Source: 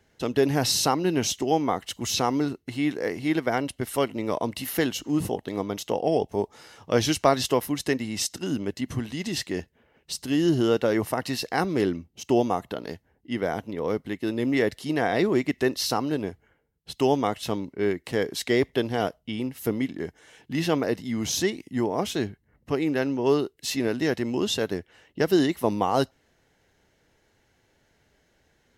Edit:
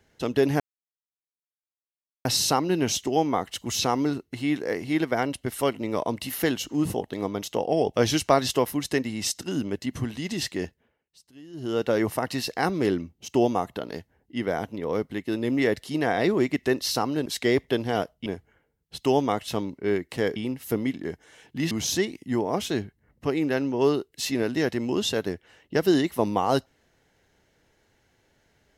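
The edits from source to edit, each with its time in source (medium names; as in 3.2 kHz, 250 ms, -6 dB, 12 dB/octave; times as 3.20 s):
0.60 s: insert silence 1.65 s
6.31–6.91 s: delete
9.59–10.87 s: dip -23 dB, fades 0.39 s
18.31–19.31 s: move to 16.21 s
20.66–21.16 s: delete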